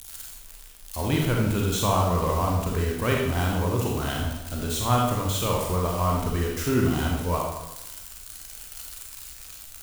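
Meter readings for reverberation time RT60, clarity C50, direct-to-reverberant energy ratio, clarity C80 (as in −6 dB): 0.95 s, 1.5 dB, −1.5 dB, 4.5 dB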